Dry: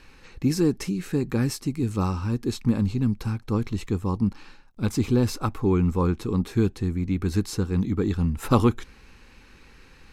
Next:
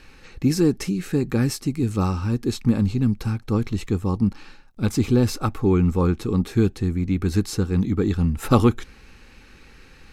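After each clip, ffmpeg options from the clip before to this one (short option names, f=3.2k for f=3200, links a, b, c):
-af "bandreject=f=1k:w=9.6,volume=3dB"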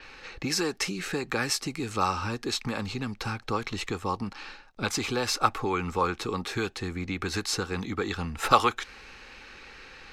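-filter_complex "[0:a]acrossover=split=420 6400:gain=0.224 1 0.141[a][b][c];[a][b][c]amix=inputs=3:normalize=0,acrossover=split=670|4800[d][e][f];[d]acompressor=threshold=-36dB:ratio=6[g];[g][e][f]amix=inputs=3:normalize=0,adynamicequalizer=threshold=0.00282:dfrequency=7400:dqfactor=0.7:tfrequency=7400:tqfactor=0.7:attack=5:release=100:ratio=0.375:range=3.5:mode=boostabove:tftype=highshelf,volume=5.5dB"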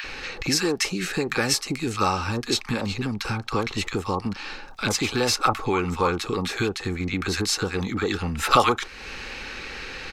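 -filter_complex "[0:a]acrossover=split=1100[a][b];[a]adelay=40[c];[c][b]amix=inputs=2:normalize=0,acompressor=mode=upward:threshold=-32dB:ratio=2.5,volume=5.5dB"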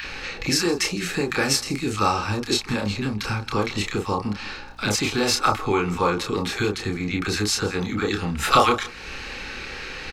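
-filter_complex "[0:a]asplit=2[a][b];[b]adelay=29,volume=-4dB[c];[a][c]amix=inputs=2:normalize=0,aecho=1:1:162:0.0891,aeval=exprs='val(0)+0.00355*(sin(2*PI*60*n/s)+sin(2*PI*2*60*n/s)/2+sin(2*PI*3*60*n/s)/3+sin(2*PI*4*60*n/s)/4+sin(2*PI*5*60*n/s)/5)':c=same"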